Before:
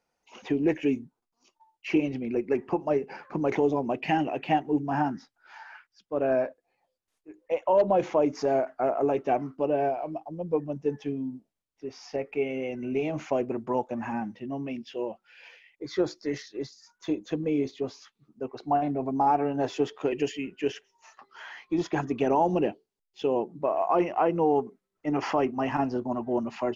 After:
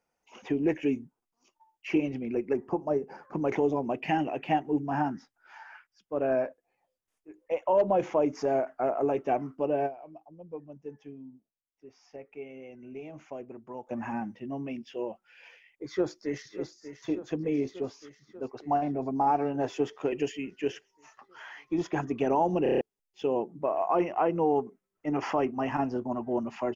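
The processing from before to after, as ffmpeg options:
-filter_complex "[0:a]asettb=1/sr,asplit=3[s0][s1][s2];[s0]atrim=end=2.534[s3];[s1]atrim=start=2.53:end=3.33,asetpts=PTS-STARTPTS,afade=t=in:d=0.004:c=qsin,afade=t=out:st=0.796:d=0.004:c=qsin,equalizer=f=2500:t=o:w=0.97:g=-13.5[s4];[s2]atrim=start=3.326[s5];[s3][s4]acrossfade=d=0.004:c1=hsin:c2=qsin[s6];[s6][s5]acrossfade=d=0.004:c1=qsin:c2=hsin,asplit=2[s7][s8];[s8]afade=t=in:st=15.86:d=0.01,afade=t=out:st=16.54:d=0.01,aecho=0:1:590|1180|1770|2360|2950|3540|4130|4720|5310|5900:0.266073|0.186251|0.130376|0.0912629|0.063884|0.0447188|0.0313032|0.0219122|0.0153386|0.010737[s9];[s7][s9]amix=inputs=2:normalize=0,asplit=9[s10][s11][s12][s13][s14][s15][s16][s17][s18];[s10]atrim=end=10.03,asetpts=PTS-STARTPTS,afade=t=out:st=9.86:d=0.17:c=exp:silence=0.266073[s19];[s11]atrim=start=10.03:end=13.71,asetpts=PTS-STARTPTS,volume=0.266[s20];[s12]atrim=start=13.71:end=22.662,asetpts=PTS-STARTPTS,afade=t=in:d=0.17:c=exp:silence=0.266073[s21];[s13]atrim=start=22.628:end=22.662[s22];[s14]atrim=start=22.628:end=22.662[s23];[s15]atrim=start=22.628:end=22.662[s24];[s16]atrim=start=22.628:end=22.662[s25];[s17]atrim=start=22.628:end=22.662[s26];[s18]atrim=start=22.808[s27];[s19][s20][s21]concat=n=3:v=0:a=1[s28];[s28][s22]acrossfade=d=0.004:c1=hsin:c2=hsin[s29];[s29][s23]acrossfade=d=0.004:c1=hsin:c2=hsin[s30];[s30][s24]acrossfade=d=0.004:c1=hsin:c2=hsin[s31];[s31][s25]acrossfade=d=0.004:c1=hsin:c2=hsin[s32];[s32][s26]acrossfade=d=0.004:c1=hsin:c2=hsin[s33];[s33][s27]acrossfade=d=0.004:c1=hsin:c2=hsin,equalizer=f=4100:w=3.1:g=-7.5,volume=0.794"

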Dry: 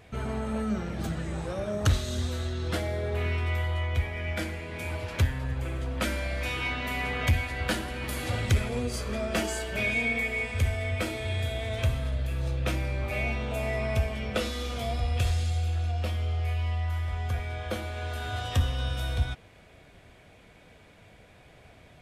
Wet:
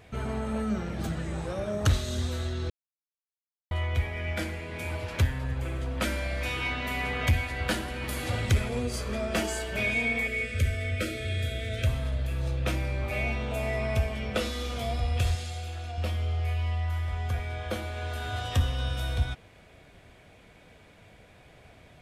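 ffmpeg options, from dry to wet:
-filter_complex "[0:a]asettb=1/sr,asplit=3[s0][s1][s2];[s0]atrim=end=10.274[s3];[s1]atrim=start=10.27:end=11.87,asetpts=PTS-STARTPTS,afade=t=in:d=0.004:c=qsin,afade=t=out:st=1.596:d=0.004:c=qsin,asuperstop=centerf=900:order=12:qfactor=1.5[s4];[s2]atrim=start=11.866[s5];[s3][s4]acrossfade=d=0.004:c1=hsin:c2=qsin[s6];[s6][s5]acrossfade=d=0.004:c1=qsin:c2=hsin,asettb=1/sr,asplit=3[s7][s8][s9];[s7]atrim=end=15.354[s10];[s8]atrim=start=15.35:end=15.98,asetpts=PTS-STARTPTS,afade=t=in:d=0.004:c=qsin,afade=t=out:st=0.626:d=0.004:c=qsin,lowshelf=f=160:g=-11.5[s11];[s9]atrim=start=15.976[s12];[s10][s11]acrossfade=d=0.004:c1=hsin:c2=qsin[s13];[s13][s12]acrossfade=d=0.004:c1=qsin:c2=hsin,asplit=3[s14][s15][s16];[s14]atrim=end=2.7,asetpts=PTS-STARTPTS,afade=t=out:st=2.696:d=0.004:c=hsin[s17];[s15]atrim=start=2.7:end=3.71,asetpts=PTS-STARTPTS,volume=0[s18];[s16]atrim=start=3.71,asetpts=PTS-STARTPTS,afade=t=in:d=0.004:c=hsin[s19];[s17][s18][s19]concat=n=3:v=0:a=1"

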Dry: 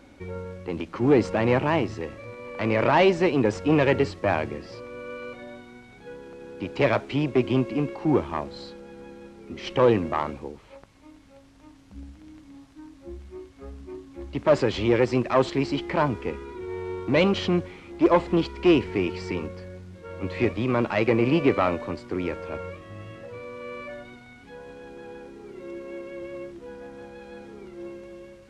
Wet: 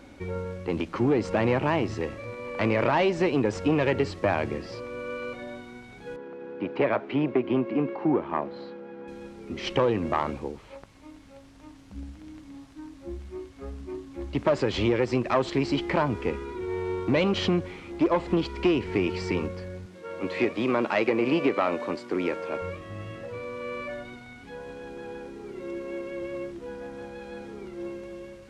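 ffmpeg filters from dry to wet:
-filter_complex "[0:a]asettb=1/sr,asplit=3[s0][s1][s2];[s0]atrim=end=6.164[s3];[s1]atrim=start=6.16:end=9.08,asetpts=PTS-STARTPTS,afade=t=in:d=0.004:c=qsin,afade=t=out:st=2.916:d=0.004:c=qsin,highpass=190,lowpass=2100[s4];[s2]atrim=start=9.076[s5];[s3][s4]acrossfade=d=0.004:c1=hsin:c2=qsin[s6];[s6][s5]acrossfade=d=0.004:c1=qsin:c2=hsin,asettb=1/sr,asplit=3[s7][s8][s9];[s7]atrim=end=19.864[s10];[s8]atrim=start=19.86:end=22.62,asetpts=PTS-STARTPTS,afade=t=in:d=0.004:c=qsin,afade=t=out:st=2.756:d=0.004:c=qsin,highpass=230[s11];[s9]atrim=start=22.616[s12];[s10][s11]acrossfade=d=0.004:c1=hsin:c2=qsin[s13];[s13][s12]acrossfade=d=0.004:c1=qsin:c2=hsin,acompressor=threshold=0.0794:ratio=6,volume=1.33"

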